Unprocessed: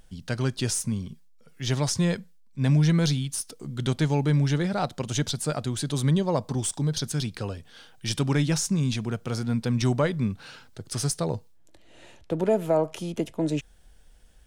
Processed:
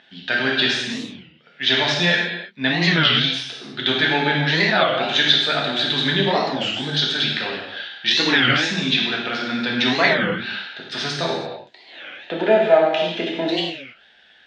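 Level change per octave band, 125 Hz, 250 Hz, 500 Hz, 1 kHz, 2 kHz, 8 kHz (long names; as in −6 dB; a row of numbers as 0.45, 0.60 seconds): −4.5, +2.0, +7.5, +11.0, +19.0, −6.5 decibels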